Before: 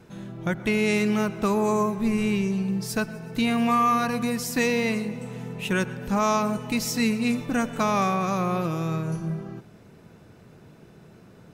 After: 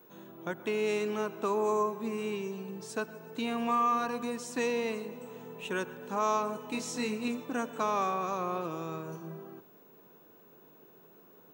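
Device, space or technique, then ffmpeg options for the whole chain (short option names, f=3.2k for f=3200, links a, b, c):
old television with a line whistle: -filter_complex "[0:a]asettb=1/sr,asplit=3[a][b][c];[a]atrim=end=6.714[d];[b]atrim=start=6.71:end=7.28,asetpts=PTS-STARTPTS,afade=t=in:d=0.004:c=qsin,afade=t=out:st=0.566:d=0.004:c=qsin,asplit=2[e][f];[f]adelay=24,volume=-4dB[g];[e][g]amix=inputs=2:normalize=0,atrim=end_sample=25137[h];[c]atrim=start=7.276[i];[d][h]acrossfade=d=0.004:c1=hsin:c2=qsin[j];[j][i]acrossfade=d=0.004:c1=qsin:c2=hsin,highpass=f=190:w=0.5412,highpass=f=190:w=1.3066,equalizer=f=200:t=q:w=4:g=-7,equalizer=f=430:t=q:w=4:g=4,equalizer=f=1k:t=q:w=4:g=5,equalizer=f=2.1k:t=q:w=4:g=-6,equalizer=f=4.9k:t=q:w=4:g=-8,lowpass=f=8.8k:w=0.5412,lowpass=f=8.8k:w=1.3066,aeval=exprs='val(0)+0.00282*sin(2*PI*15625*n/s)':c=same,volume=-7.5dB"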